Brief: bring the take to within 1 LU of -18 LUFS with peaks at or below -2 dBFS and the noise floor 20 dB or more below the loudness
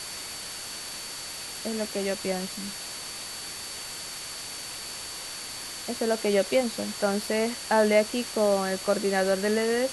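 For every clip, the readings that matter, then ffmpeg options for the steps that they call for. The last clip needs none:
steady tone 4500 Hz; tone level -41 dBFS; noise floor -38 dBFS; noise floor target -49 dBFS; loudness -28.5 LUFS; peak -9.5 dBFS; loudness target -18.0 LUFS
-> -af "bandreject=f=4.5k:w=30"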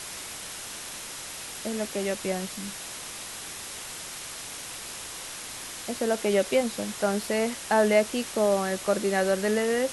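steady tone none; noise floor -39 dBFS; noise floor target -49 dBFS
-> -af "afftdn=nr=10:nf=-39"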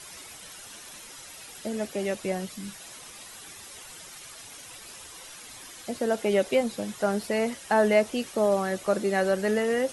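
noise floor -45 dBFS; noise floor target -47 dBFS
-> -af "afftdn=nr=6:nf=-45"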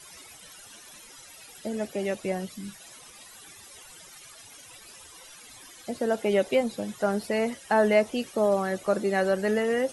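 noise floor -49 dBFS; loudness -27.0 LUFS; peak -10.0 dBFS; loudness target -18.0 LUFS
-> -af "volume=9dB,alimiter=limit=-2dB:level=0:latency=1"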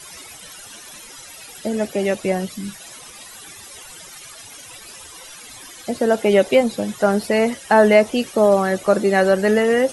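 loudness -18.0 LUFS; peak -2.0 dBFS; noise floor -40 dBFS

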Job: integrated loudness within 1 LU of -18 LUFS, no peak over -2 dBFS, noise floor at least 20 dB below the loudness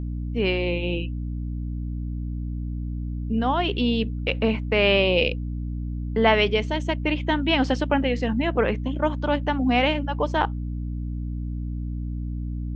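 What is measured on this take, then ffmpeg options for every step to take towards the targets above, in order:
hum 60 Hz; harmonics up to 300 Hz; hum level -26 dBFS; loudness -24.5 LUFS; peak -5.5 dBFS; loudness target -18.0 LUFS
-> -af "bandreject=f=60:t=h:w=6,bandreject=f=120:t=h:w=6,bandreject=f=180:t=h:w=6,bandreject=f=240:t=h:w=6,bandreject=f=300:t=h:w=6"
-af "volume=6.5dB,alimiter=limit=-2dB:level=0:latency=1"

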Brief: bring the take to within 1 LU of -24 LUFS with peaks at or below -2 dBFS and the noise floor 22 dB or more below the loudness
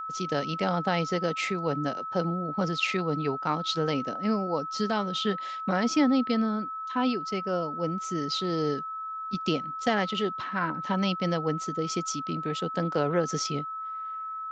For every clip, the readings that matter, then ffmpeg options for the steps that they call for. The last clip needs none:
steady tone 1300 Hz; tone level -33 dBFS; loudness -29.0 LUFS; peak -11.5 dBFS; loudness target -24.0 LUFS
-> -af "bandreject=f=1.3k:w=30"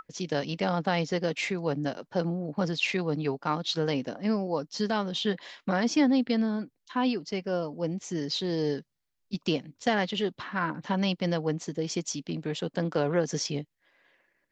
steady tone none; loudness -29.5 LUFS; peak -12.0 dBFS; loudness target -24.0 LUFS
-> -af "volume=5.5dB"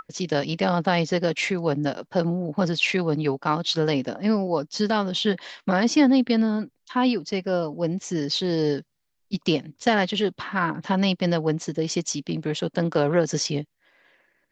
loudness -24.0 LUFS; peak -6.5 dBFS; noise floor -74 dBFS

